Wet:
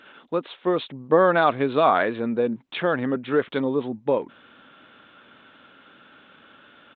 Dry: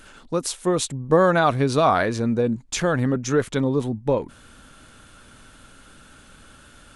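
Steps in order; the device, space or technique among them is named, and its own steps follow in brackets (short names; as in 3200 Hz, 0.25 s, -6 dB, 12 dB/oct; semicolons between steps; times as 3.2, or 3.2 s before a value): Bluetooth headset (HPF 250 Hz 12 dB/oct; downsampling 8000 Hz; SBC 64 kbps 16000 Hz)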